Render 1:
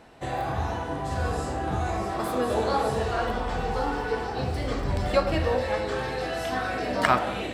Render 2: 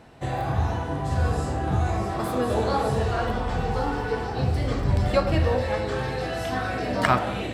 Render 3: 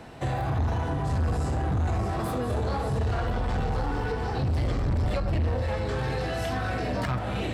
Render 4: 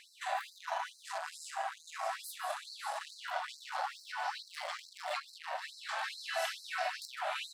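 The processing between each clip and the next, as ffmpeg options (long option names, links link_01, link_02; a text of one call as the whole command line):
ffmpeg -i in.wav -af "equalizer=frequency=110:width=0.79:gain=8" out.wav
ffmpeg -i in.wav -filter_complex "[0:a]acrossover=split=140[link_01][link_02];[link_02]acompressor=threshold=-32dB:ratio=5[link_03];[link_01][link_03]amix=inputs=2:normalize=0,asoftclip=type=tanh:threshold=-27.5dB,volume=5.5dB" out.wav
ffmpeg -i in.wav -filter_complex "[0:a]asplit=2[link_01][link_02];[link_02]adelay=151.6,volume=-12dB,highshelf=frequency=4000:gain=-3.41[link_03];[link_01][link_03]amix=inputs=2:normalize=0,afftfilt=real='re*gte(b*sr/1024,550*pow(4000/550,0.5+0.5*sin(2*PI*2.3*pts/sr)))':imag='im*gte(b*sr/1024,550*pow(4000/550,0.5+0.5*sin(2*PI*2.3*pts/sr)))':win_size=1024:overlap=0.75" out.wav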